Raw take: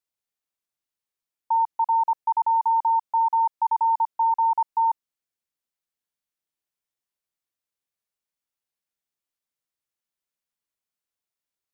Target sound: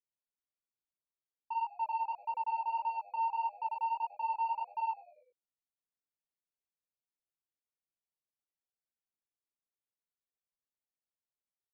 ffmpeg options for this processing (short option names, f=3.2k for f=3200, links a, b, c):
-filter_complex "[0:a]lowpass=1k,asoftclip=type=tanh:threshold=-20.5dB,flanger=delay=16:depth=3.8:speed=1.7,asplit=5[a][b][c][d][e];[b]adelay=97,afreqshift=-100,volume=-20.5dB[f];[c]adelay=194,afreqshift=-200,volume=-26.2dB[g];[d]adelay=291,afreqshift=-300,volume=-31.9dB[h];[e]adelay=388,afreqshift=-400,volume=-37.5dB[i];[a][f][g][h][i]amix=inputs=5:normalize=0,volume=-5.5dB"